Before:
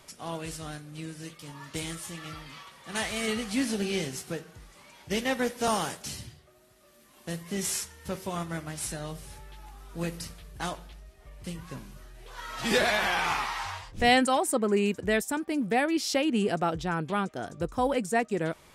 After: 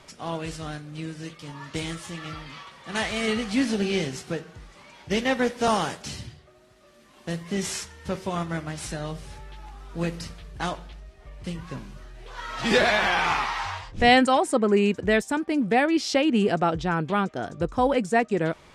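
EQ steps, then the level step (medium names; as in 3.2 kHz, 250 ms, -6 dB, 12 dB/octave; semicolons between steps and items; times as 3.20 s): distance through air 70 m; +5.0 dB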